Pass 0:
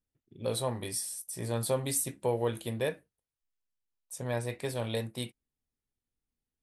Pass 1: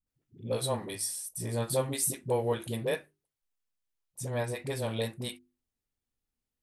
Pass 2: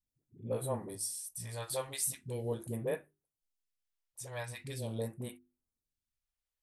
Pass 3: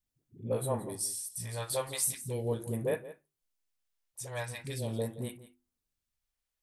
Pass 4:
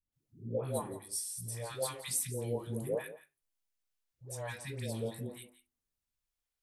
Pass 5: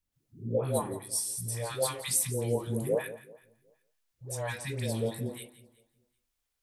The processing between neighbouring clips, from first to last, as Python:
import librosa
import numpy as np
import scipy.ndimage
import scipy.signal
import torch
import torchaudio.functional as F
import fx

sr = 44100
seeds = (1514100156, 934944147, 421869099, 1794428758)

y1 = fx.hum_notches(x, sr, base_hz=50, count=8)
y1 = fx.dispersion(y1, sr, late='highs', ms=68.0, hz=320.0)
y1 = F.gain(torch.from_numpy(y1), 1.0).numpy()
y2 = fx.phaser_stages(y1, sr, stages=2, low_hz=200.0, high_hz=4700.0, hz=0.42, feedback_pct=25)
y2 = F.gain(torch.from_numpy(y2), -4.5).numpy()
y3 = y2 + 10.0 ** (-15.5 / 20.0) * np.pad(y2, (int(172 * sr / 1000.0), 0))[:len(y2)]
y3 = F.gain(torch.from_numpy(y3), 3.5).numpy()
y4 = fx.dispersion(y3, sr, late='highs', ms=127.0, hz=780.0)
y4 = F.gain(torch.from_numpy(y4), -3.0).numpy()
y5 = fx.echo_feedback(y4, sr, ms=376, feedback_pct=20, wet_db=-24)
y5 = F.gain(torch.from_numpy(y5), 6.0).numpy()